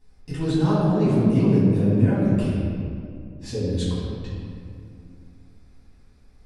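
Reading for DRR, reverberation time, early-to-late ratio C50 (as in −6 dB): −10.5 dB, 2.4 s, −2.5 dB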